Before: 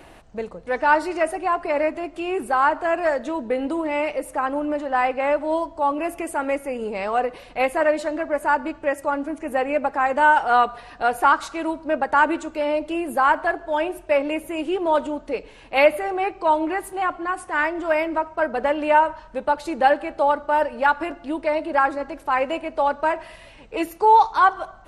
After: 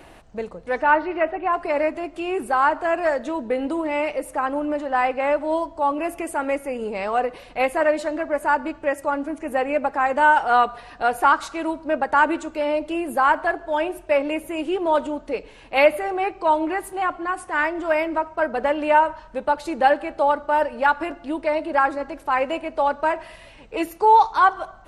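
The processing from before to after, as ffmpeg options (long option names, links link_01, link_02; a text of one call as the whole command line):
ffmpeg -i in.wav -filter_complex "[0:a]asplit=3[link_01][link_02][link_03];[link_01]afade=type=out:start_time=0.82:duration=0.02[link_04];[link_02]lowpass=frequency=3100:width=0.5412,lowpass=frequency=3100:width=1.3066,afade=type=in:start_time=0.82:duration=0.02,afade=type=out:start_time=1.52:duration=0.02[link_05];[link_03]afade=type=in:start_time=1.52:duration=0.02[link_06];[link_04][link_05][link_06]amix=inputs=3:normalize=0" out.wav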